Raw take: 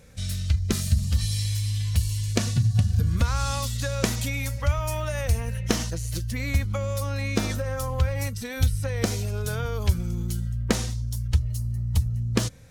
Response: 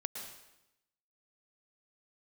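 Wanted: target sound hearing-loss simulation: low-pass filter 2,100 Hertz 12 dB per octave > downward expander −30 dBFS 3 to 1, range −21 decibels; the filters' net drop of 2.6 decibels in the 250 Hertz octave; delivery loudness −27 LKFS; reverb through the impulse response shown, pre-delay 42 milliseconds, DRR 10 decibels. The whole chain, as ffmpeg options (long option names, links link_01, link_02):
-filter_complex "[0:a]equalizer=frequency=250:width_type=o:gain=-3.5,asplit=2[link_01][link_02];[1:a]atrim=start_sample=2205,adelay=42[link_03];[link_02][link_03]afir=irnorm=-1:irlink=0,volume=-10dB[link_04];[link_01][link_04]amix=inputs=2:normalize=0,lowpass=2100,agate=range=-21dB:threshold=-30dB:ratio=3"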